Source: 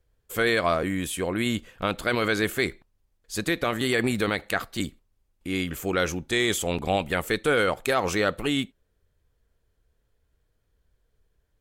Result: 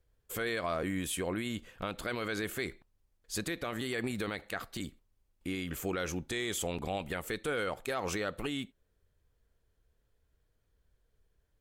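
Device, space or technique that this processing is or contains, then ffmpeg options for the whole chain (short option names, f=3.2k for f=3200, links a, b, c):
stacked limiters: -af "alimiter=limit=-16dB:level=0:latency=1:release=265,alimiter=limit=-20.5dB:level=0:latency=1:release=77,volume=-3.5dB"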